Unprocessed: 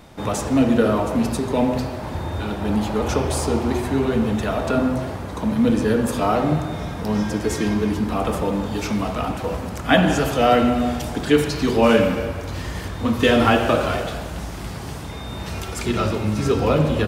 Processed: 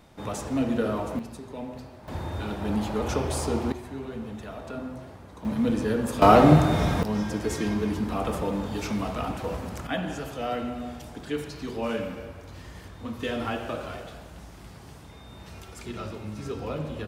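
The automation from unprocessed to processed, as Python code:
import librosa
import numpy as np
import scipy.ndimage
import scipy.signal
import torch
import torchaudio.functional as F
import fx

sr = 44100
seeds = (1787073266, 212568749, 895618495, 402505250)

y = fx.gain(x, sr, db=fx.steps((0.0, -9.0), (1.19, -17.5), (2.08, -6.0), (3.72, -16.0), (5.45, -7.0), (6.22, 4.5), (7.03, -6.0), (9.87, -14.5)))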